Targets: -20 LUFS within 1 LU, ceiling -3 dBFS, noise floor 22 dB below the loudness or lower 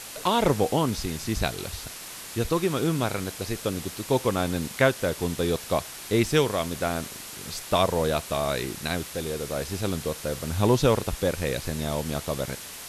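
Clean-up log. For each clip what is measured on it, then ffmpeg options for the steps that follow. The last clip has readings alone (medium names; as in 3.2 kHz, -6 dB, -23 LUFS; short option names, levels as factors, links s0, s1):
noise floor -40 dBFS; noise floor target -49 dBFS; loudness -27.0 LUFS; peak level -7.0 dBFS; loudness target -20.0 LUFS
-> -af "afftdn=nr=9:nf=-40"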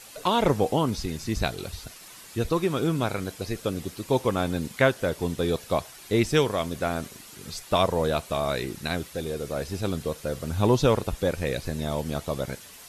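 noise floor -47 dBFS; noise floor target -49 dBFS
-> -af "afftdn=nr=6:nf=-47"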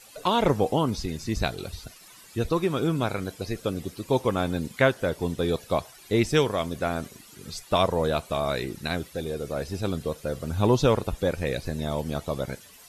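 noise floor -50 dBFS; loudness -27.0 LUFS; peak level -7.0 dBFS; loudness target -20.0 LUFS
-> -af "volume=2.24,alimiter=limit=0.708:level=0:latency=1"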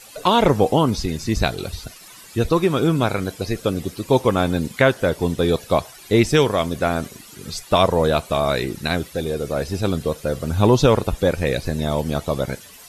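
loudness -20.5 LUFS; peak level -3.0 dBFS; noise floor -43 dBFS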